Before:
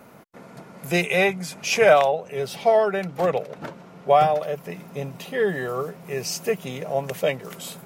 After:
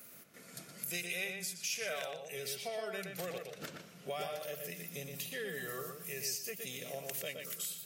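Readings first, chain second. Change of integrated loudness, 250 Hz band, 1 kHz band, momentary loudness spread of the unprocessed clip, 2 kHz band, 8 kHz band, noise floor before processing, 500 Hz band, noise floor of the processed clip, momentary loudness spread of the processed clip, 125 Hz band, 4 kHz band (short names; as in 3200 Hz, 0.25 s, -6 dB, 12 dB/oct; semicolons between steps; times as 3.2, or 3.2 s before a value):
-17.5 dB, -18.5 dB, -24.5 dB, 16 LU, -14.5 dB, -5.0 dB, -46 dBFS, -21.5 dB, -55 dBFS, 10 LU, -18.0 dB, -9.5 dB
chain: pre-emphasis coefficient 0.9; spectral noise reduction 6 dB; bell 890 Hz -12.5 dB 0.59 oct; compressor 3:1, threshold -53 dBFS, peak gain reduction 20 dB; on a send: darkening echo 0.119 s, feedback 23%, low-pass 3800 Hz, level -4 dB; on the sum: gain +10.5 dB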